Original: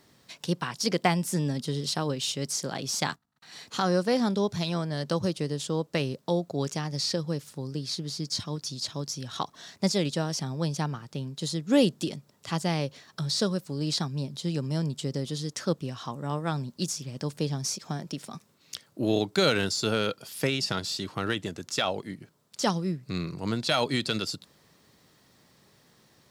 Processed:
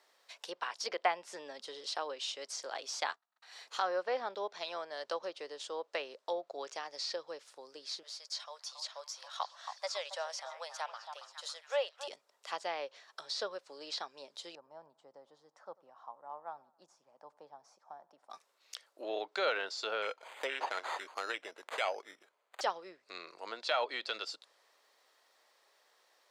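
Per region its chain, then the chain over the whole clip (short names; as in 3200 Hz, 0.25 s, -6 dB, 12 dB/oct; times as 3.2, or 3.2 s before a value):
8.03–12.08 Chebyshev high-pass 560 Hz, order 4 + delay with a stepping band-pass 0.275 s, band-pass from 950 Hz, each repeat 0.7 oct, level -6 dB
14.55–18.3 EQ curve 150 Hz 0 dB, 420 Hz -15 dB, 840 Hz -2 dB, 2700 Hz -27 dB + feedback echo 93 ms, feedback 52%, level -23.5 dB
20.02–22.61 brick-wall FIR low-pass 9000 Hz + careless resampling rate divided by 8×, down none, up hold
whole clip: treble ducked by the level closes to 2800 Hz, closed at -21.5 dBFS; HPF 530 Hz 24 dB/oct; high shelf 4400 Hz -6.5 dB; gain -4 dB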